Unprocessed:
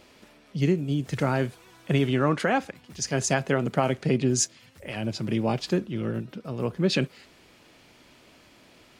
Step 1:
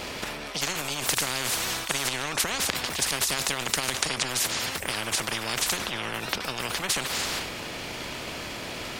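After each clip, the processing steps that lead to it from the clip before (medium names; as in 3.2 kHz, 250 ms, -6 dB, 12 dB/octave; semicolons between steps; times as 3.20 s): transient shaper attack +7 dB, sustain +11 dB; spectrum-flattening compressor 10:1; trim +3 dB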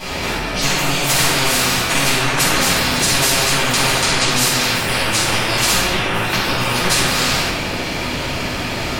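reverberation RT60 1.1 s, pre-delay 4 ms, DRR -12 dB; trim -2.5 dB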